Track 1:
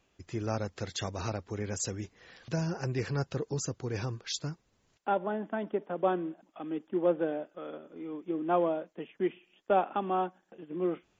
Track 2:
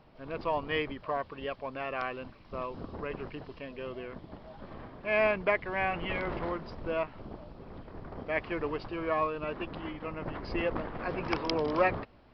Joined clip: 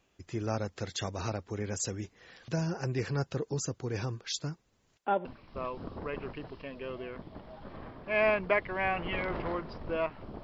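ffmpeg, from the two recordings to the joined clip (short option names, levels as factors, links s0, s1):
-filter_complex "[0:a]apad=whole_dur=10.43,atrim=end=10.43,atrim=end=5.252[s0];[1:a]atrim=start=2.218:end=7.4[s1];[s0][s1]acrossfade=d=0.004:c1=hsin:c2=hsin"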